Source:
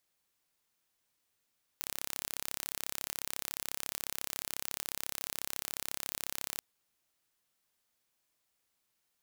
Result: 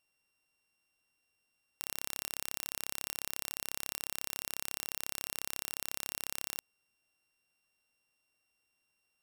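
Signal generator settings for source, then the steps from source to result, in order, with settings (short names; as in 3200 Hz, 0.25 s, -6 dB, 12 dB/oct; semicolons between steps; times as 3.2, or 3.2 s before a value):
pulse train 34.1/s, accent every 0, -9.5 dBFS 4.80 s
sample sorter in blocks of 16 samples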